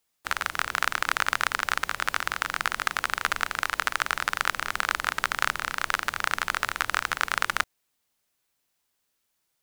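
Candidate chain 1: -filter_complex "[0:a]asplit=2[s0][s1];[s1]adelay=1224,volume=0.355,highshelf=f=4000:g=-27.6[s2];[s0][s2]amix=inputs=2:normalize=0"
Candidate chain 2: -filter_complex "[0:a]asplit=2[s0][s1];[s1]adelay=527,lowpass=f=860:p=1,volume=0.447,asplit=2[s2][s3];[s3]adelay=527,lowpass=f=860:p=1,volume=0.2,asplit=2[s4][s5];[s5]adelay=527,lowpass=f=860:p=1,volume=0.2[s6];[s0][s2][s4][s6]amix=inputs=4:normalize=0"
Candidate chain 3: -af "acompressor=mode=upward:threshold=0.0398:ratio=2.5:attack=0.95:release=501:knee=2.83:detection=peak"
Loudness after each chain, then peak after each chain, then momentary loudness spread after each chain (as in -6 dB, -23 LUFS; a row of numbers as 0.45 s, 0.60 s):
-27.0 LUFS, -27.0 LUFS, -27.5 LUFS; -2.5 dBFS, -2.5 dBFS, -2.5 dBFS; 15 LU, 4 LU, 3 LU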